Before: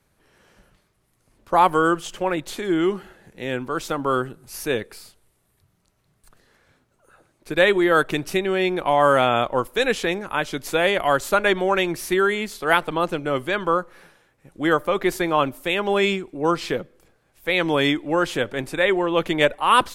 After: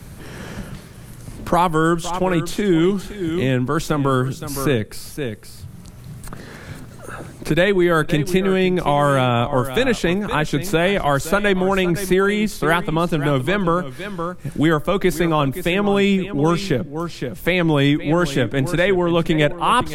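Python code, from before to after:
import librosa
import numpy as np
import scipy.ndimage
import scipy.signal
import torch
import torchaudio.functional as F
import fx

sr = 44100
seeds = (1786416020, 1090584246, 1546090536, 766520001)

p1 = fx.bass_treble(x, sr, bass_db=14, treble_db=3)
p2 = p1 + fx.echo_single(p1, sr, ms=515, db=-14.5, dry=0)
y = fx.band_squash(p2, sr, depth_pct=70)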